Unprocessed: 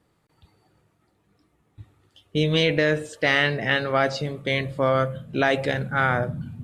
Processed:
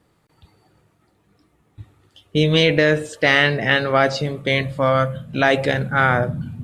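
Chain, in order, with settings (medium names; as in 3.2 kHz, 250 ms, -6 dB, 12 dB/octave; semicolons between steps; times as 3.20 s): 4.62–5.44 s: peaking EQ 380 Hz -13 dB 0.4 oct; trim +5 dB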